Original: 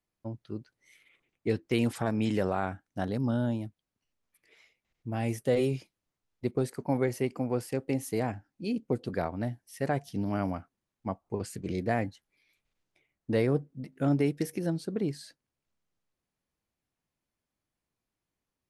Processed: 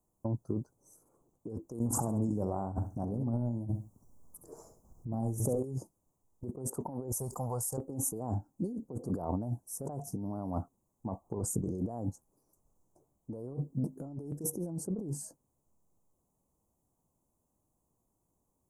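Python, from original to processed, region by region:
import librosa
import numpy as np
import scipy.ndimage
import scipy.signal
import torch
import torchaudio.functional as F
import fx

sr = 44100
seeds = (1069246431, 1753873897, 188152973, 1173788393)

y = fx.chain(x, sr, fx.low_shelf(hz=250.0, db=7.5),
    fx.over_compress(threshold_db=-34.0, ratio=-1.0),
    fx.echo_feedback(ms=67, feedback_pct=24, wet_db=-9.5), at=(1.79, 5.64))
y = fx.chain(y, sr, fx.tone_stack(knobs='10-0-10'),
    fx.env_flatten(amount_pct=70), at=(7.12, 7.78))
y = scipy.signal.sosfilt(scipy.signal.ellip(3, 1.0, 50, [1000.0, 6900.0], 'bandstop', fs=sr, output='sos'), y)
y = fx.over_compress(y, sr, threshold_db=-39.0, ratio=-1.0)
y = y * librosa.db_to_amplitude(3.5)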